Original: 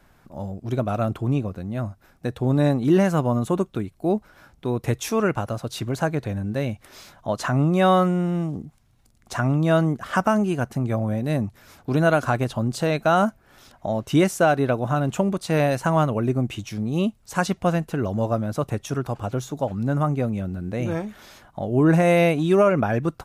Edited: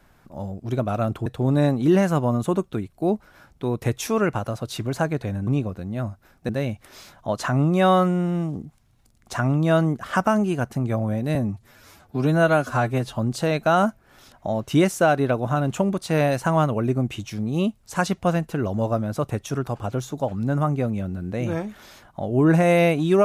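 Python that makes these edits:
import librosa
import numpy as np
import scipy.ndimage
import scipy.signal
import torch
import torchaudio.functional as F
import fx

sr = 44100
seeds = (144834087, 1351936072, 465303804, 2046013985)

y = fx.edit(x, sr, fx.move(start_s=1.26, length_s=1.02, to_s=6.49),
    fx.stretch_span(start_s=11.35, length_s=1.21, factor=1.5), tone=tone)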